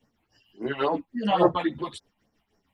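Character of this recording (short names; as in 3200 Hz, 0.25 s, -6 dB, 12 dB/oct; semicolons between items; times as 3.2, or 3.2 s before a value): phasing stages 6, 3.6 Hz, lowest notch 370–3500 Hz; tremolo triangle 6.4 Hz, depth 70%; a shimmering, thickened sound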